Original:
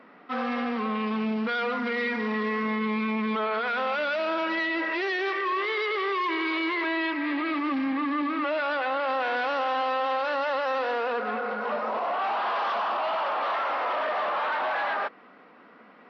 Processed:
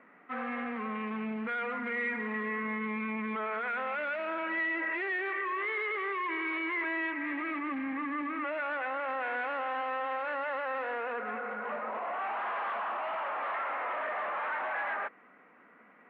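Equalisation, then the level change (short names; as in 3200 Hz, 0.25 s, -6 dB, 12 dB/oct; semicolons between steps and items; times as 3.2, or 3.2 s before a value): ladder low-pass 2500 Hz, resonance 45%; bell 68 Hz +6.5 dB 1.5 oct; 0.0 dB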